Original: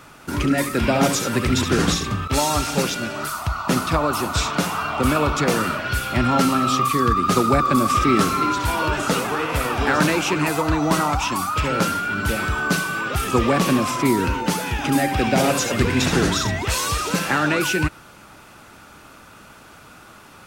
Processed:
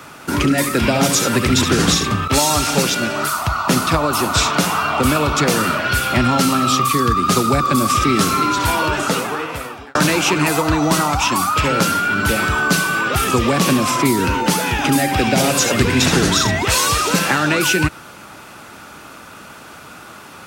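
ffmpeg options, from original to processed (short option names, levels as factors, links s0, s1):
-filter_complex "[0:a]asplit=2[s0][s1];[s0]atrim=end=9.95,asetpts=PTS-STARTPTS,afade=t=out:st=8.64:d=1.31[s2];[s1]atrim=start=9.95,asetpts=PTS-STARTPTS,afade=t=in:d=0.004:c=hsin[s3];[s2][s3]concat=n=2:v=0:a=1,highpass=f=120:p=1,acrossover=split=170|3000[s4][s5][s6];[s5]acompressor=threshold=0.0794:ratio=6[s7];[s4][s7][s6]amix=inputs=3:normalize=0,volume=2.37"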